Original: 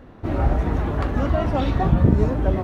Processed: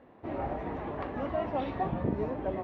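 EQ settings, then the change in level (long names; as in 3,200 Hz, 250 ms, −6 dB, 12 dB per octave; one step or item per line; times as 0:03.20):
high-pass filter 570 Hz 6 dB per octave
low-pass filter 2,100 Hz 12 dB per octave
parametric band 1,400 Hz −8.5 dB 0.5 octaves
−4.0 dB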